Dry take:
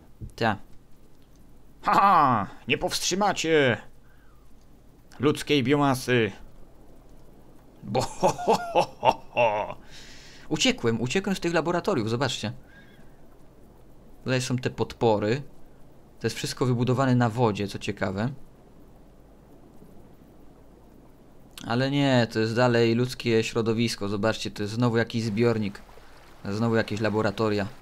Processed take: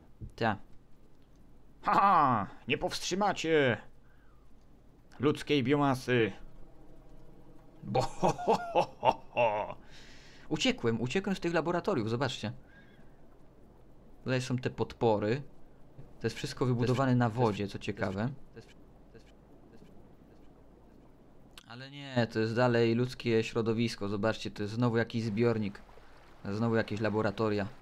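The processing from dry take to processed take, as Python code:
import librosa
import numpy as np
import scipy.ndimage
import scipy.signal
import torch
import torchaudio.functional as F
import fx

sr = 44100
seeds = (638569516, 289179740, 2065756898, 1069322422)

y = fx.comb(x, sr, ms=6.3, depth=0.65, at=(6.19, 8.32))
y = fx.echo_throw(y, sr, start_s=15.4, length_s=1.0, ms=580, feedback_pct=55, wet_db=-2.0)
y = fx.tone_stack(y, sr, knobs='5-5-5', at=(21.59, 22.16), fade=0.02)
y = fx.high_shelf(y, sr, hz=5600.0, db=-9.5)
y = y * librosa.db_to_amplitude(-5.5)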